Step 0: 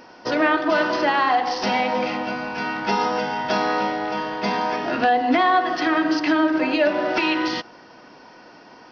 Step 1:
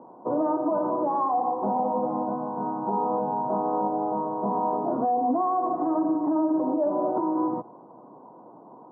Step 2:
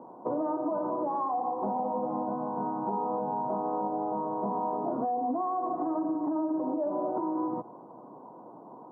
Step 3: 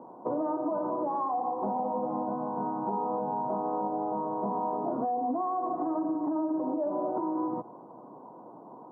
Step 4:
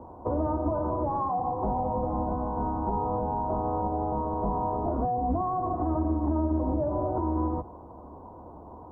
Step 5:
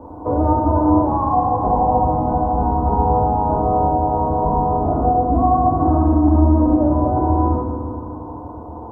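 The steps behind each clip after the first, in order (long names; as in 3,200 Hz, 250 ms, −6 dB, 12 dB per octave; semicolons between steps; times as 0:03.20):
Chebyshev band-pass filter 120–1,100 Hz, order 5; brickwall limiter −17.5 dBFS, peak gain reduction 8 dB
downward compressor 3 to 1, threshold −29 dBFS, peak gain reduction 6.5 dB
no processing that can be heard
sub-octave generator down 2 octaves, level +2 dB; level +1.5 dB
feedback delay network reverb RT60 2.3 s, low-frequency decay 1.4×, high-frequency decay 0.5×, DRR −3.5 dB; level +5 dB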